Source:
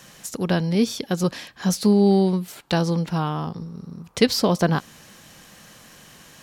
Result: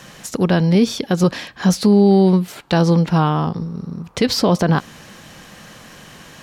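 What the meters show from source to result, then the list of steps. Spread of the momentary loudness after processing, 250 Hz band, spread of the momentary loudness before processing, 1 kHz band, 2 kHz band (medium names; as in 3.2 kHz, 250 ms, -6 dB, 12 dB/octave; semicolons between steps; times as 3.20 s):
12 LU, +5.5 dB, 15 LU, +6.0 dB, +4.0 dB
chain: peak limiter -14 dBFS, peak gain reduction 9.5 dB; treble shelf 5.7 kHz -9.5 dB; trim +8.5 dB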